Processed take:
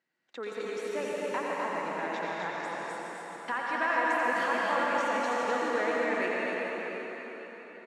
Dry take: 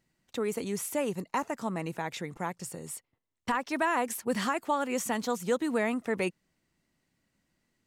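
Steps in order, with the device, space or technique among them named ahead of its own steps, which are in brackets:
station announcement (band-pass filter 350–4,300 Hz; parametric band 1,600 Hz +7 dB 0.48 octaves; loudspeakers that aren't time-aligned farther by 30 metres −7 dB, 88 metres −4 dB; convolution reverb RT60 4.8 s, pre-delay 105 ms, DRR −3.5 dB)
level −5.5 dB

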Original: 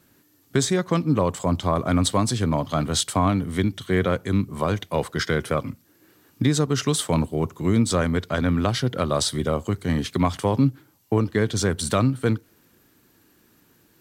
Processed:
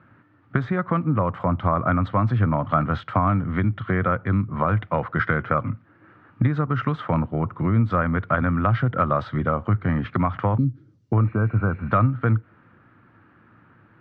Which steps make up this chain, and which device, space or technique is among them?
bass amplifier (downward compressor 3 to 1, threshold −26 dBFS, peak gain reduction 9.5 dB; loudspeaker in its box 71–2,100 Hz, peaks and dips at 110 Hz +8 dB, 280 Hz −3 dB, 410 Hz −9 dB, 1,300 Hz +9 dB)
0:10.58–0:11.13: drawn EQ curve 440 Hz 0 dB, 860 Hz −26 dB, 2,500 Hz −15 dB, 5,800 Hz +15 dB
0:11.27–0:11.90: healed spectral selection 1,600–9,400 Hz before
level +6.5 dB

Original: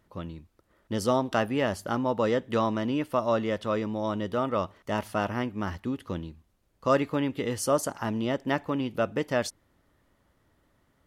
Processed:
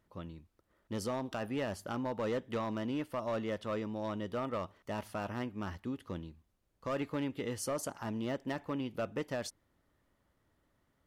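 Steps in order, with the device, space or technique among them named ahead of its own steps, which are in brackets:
limiter into clipper (brickwall limiter −16.5 dBFS, peak gain reduction 5.5 dB; hard clipping −21.5 dBFS, distortion −18 dB)
level −7.5 dB

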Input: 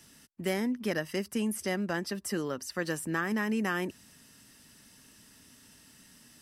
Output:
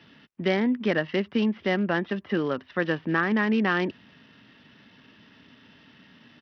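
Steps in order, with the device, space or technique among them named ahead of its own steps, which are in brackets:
Bluetooth headset (high-pass filter 110 Hz 12 dB per octave; downsampling to 8,000 Hz; level +7 dB; SBC 64 kbit/s 44,100 Hz)

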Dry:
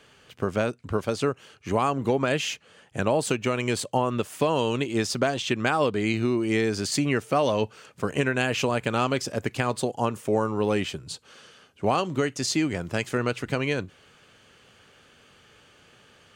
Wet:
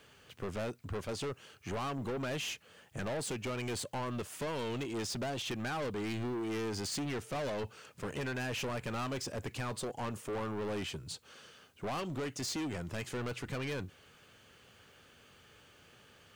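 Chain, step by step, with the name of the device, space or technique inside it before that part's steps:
open-reel tape (soft clipping −29 dBFS, distortion −5 dB; parametric band 78 Hz +3.5 dB 1.11 octaves; white noise bed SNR 37 dB)
level −5 dB

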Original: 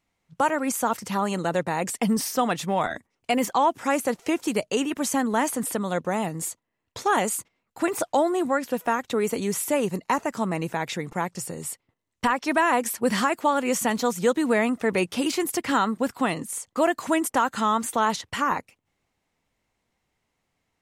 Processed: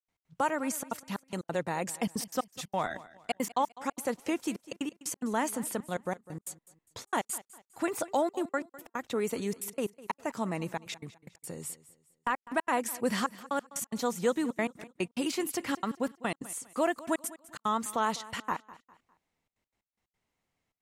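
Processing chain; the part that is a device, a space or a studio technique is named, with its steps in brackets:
trance gate with a delay (gate pattern ".x.xxxxxxx.x.x." 181 BPM −60 dB; repeating echo 202 ms, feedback 35%, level −18.5 dB)
level −6.5 dB

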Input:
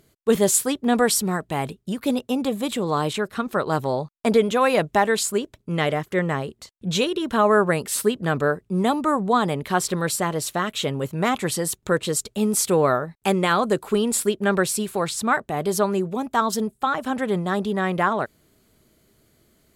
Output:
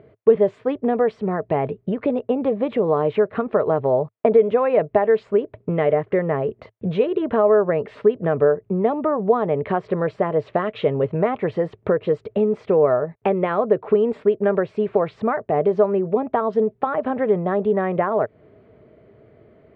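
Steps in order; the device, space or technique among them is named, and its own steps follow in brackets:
bass amplifier (downward compressor 4 to 1, threshold −30 dBFS, peak gain reduction 14.5 dB; loudspeaker in its box 70–2,200 Hz, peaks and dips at 110 Hz +7 dB, 440 Hz +10 dB, 630 Hz +9 dB, 1,500 Hz −4 dB)
0:10.47–0:11.18: dynamic equaliser 4,000 Hz, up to +4 dB, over −54 dBFS, Q 0.96
level +7.5 dB

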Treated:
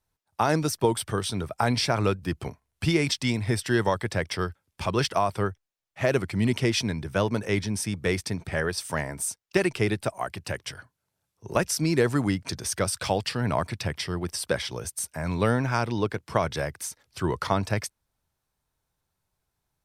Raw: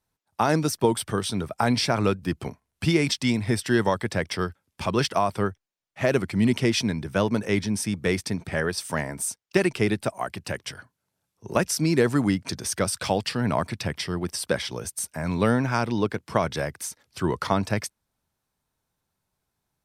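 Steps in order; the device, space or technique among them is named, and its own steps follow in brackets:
low shelf boost with a cut just above (low-shelf EQ 80 Hz +6.5 dB; parametric band 220 Hz −4.5 dB 0.87 octaves)
level −1 dB

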